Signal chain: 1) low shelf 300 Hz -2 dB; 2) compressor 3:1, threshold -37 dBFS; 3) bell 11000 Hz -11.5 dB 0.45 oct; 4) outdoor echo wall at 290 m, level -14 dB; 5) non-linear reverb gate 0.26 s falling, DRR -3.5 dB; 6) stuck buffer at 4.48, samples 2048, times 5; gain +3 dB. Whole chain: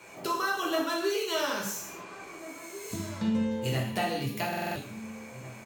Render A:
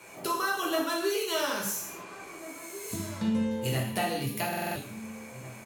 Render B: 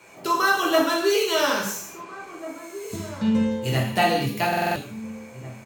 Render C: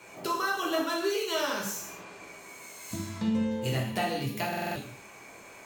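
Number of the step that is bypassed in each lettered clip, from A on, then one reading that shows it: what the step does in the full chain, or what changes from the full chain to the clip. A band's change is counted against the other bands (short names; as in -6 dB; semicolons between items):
3, 8 kHz band +3.0 dB; 2, mean gain reduction 4.0 dB; 4, momentary loudness spread change +3 LU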